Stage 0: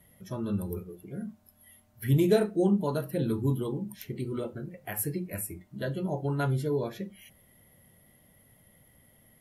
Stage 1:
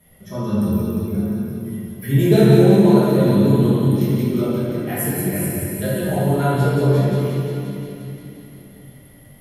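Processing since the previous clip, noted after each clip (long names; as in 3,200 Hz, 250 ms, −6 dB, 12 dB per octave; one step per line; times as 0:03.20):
delay with a high-pass on its return 176 ms, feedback 74%, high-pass 2,700 Hz, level −3.5 dB
rectangular room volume 140 cubic metres, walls hard, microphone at 1.3 metres
level +1.5 dB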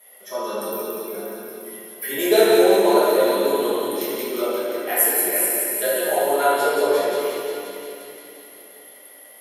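high-pass filter 440 Hz 24 dB per octave
high-shelf EQ 8,700 Hz +6 dB
level +4.5 dB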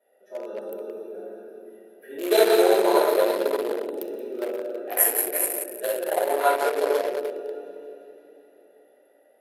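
adaptive Wiener filter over 41 samples
high-pass filter 420 Hz 12 dB per octave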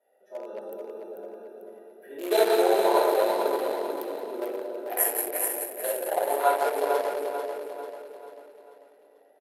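parametric band 850 Hz +6 dB 0.67 octaves
on a send: repeating echo 442 ms, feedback 44%, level −7.5 dB
on the sum: level −5 dB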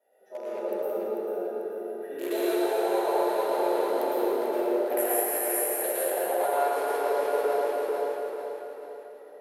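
downward compressor 12 to 1, threshold −30 dBFS, peak gain reduction 15.5 dB
dense smooth reverb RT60 2.1 s, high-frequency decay 0.55×, pre-delay 95 ms, DRR −7 dB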